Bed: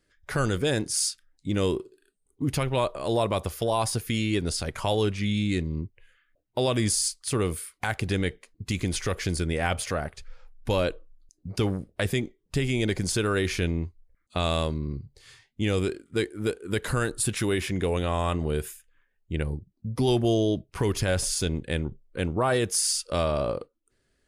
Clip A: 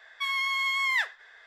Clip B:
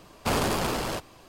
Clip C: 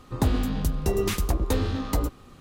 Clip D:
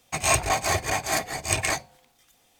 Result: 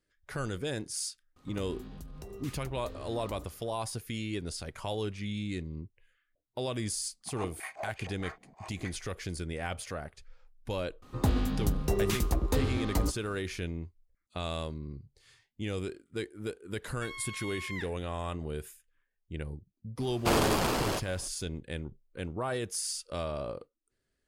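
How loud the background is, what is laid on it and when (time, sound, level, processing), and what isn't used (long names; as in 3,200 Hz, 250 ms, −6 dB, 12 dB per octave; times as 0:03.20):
bed −9.5 dB
0:01.36: mix in C −12 dB + downward compressor, threshold −29 dBFS
0:07.13: mix in D −8 dB + band-pass on a step sequencer 6.4 Hz 210–2,800 Hz
0:11.02: mix in C −4 dB
0:16.81: mix in A −15 dB
0:20.00: mix in B −1 dB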